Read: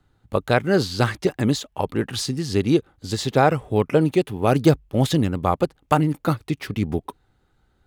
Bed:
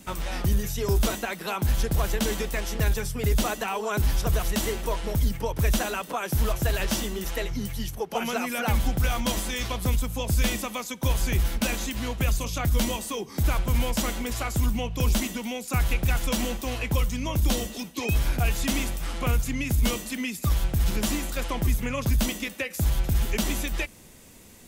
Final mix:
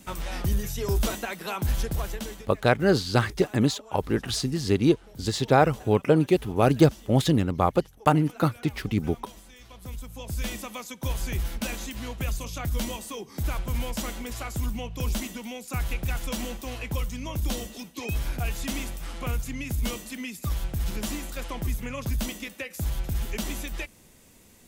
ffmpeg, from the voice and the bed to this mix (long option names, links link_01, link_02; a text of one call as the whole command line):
ffmpeg -i stem1.wav -i stem2.wav -filter_complex "[0:a]adelay=2150,volume=-2dB[link_01];[1:a]volume=13.5dB,afade=type=out:start_time=1.75:duration=0.75:silence=0.11885,afade=type=in:start_time=9.64:duration=1.11:silence=0.16788[link_02];[link_01][link_02]amix=inputs=2:normalize=0" out.wav